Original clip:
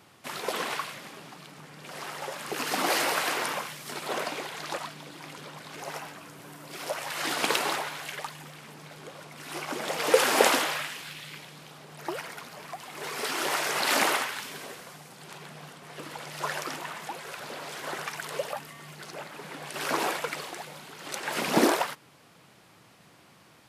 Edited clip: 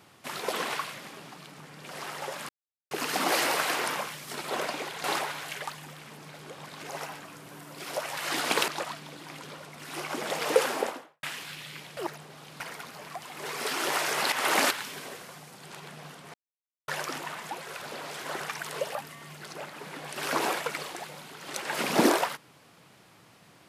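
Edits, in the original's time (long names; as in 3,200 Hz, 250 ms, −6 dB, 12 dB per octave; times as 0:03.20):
0:02.49: splice in silence 0.42 s
0:04.62–0:05.52: swap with 0:07.61–0:09.16
0:09.90–0:10.81: fade out and dull
0:11.55–0:12.18: reverse
0:13.90–0:14.29: reverse
0:15.92–0:16.46: silence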